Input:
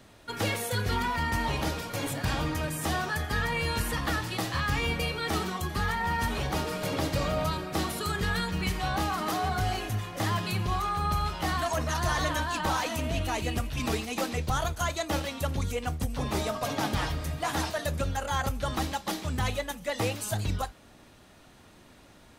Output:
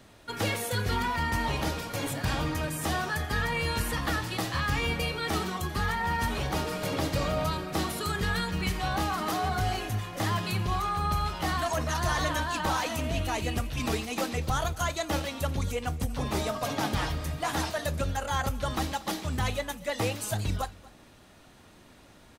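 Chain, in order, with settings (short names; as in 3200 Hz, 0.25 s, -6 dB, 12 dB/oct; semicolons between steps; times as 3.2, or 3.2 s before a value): echo 0.236 s -22 dB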